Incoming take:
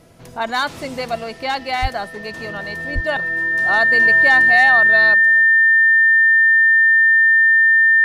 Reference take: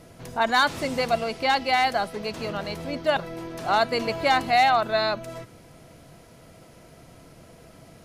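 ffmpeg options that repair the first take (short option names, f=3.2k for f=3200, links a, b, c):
-filter_complex "[0:a]bandreject=f=1.8k:w=30,asplit=3[a][b][c];[a]afade=t=out:st=1.81:d=0.02[d];[b]highpass=f=140:w=0.5412,highpass=f=140:w=1.3066,afade=t=in:st=1.81:d=0.02,afade=t=out:st=1.93:d=0.02[e];[c]afade=t=in:st=1.93:d=0.02[f];[d][e][f]amix=inputs=3:normalize=0,asplit=3[g][h][i];[g]afade=t=out:st=2.94:d=0.02[j];[h]highpass=f=140:w=0.5412,highpass=f=140:w=1.3066,afade=t=in:st=2.94:d=0.02,afade=t=out:st=3.06:d=0.02[k];[i]afade=t=in:st=3.06:d=0.02[l];[j][k][l]amix=inputs=3:normalize=0,asetnsamples=n=441:p=0,asendcmd='5.14 volume volume 7dB',volume=0dB"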